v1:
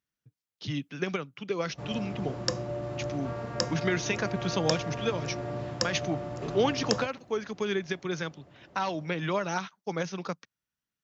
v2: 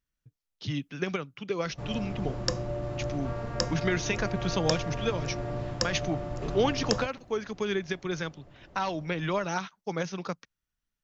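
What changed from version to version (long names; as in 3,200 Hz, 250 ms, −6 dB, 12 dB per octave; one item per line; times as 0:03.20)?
master: remove high-pass filter 110 Hz 12 dB per octave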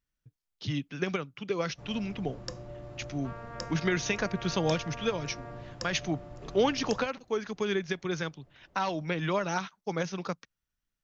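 first sound −10.5 dB
second sound: add high-shelf EQ 4,100 Hz −8.5 dB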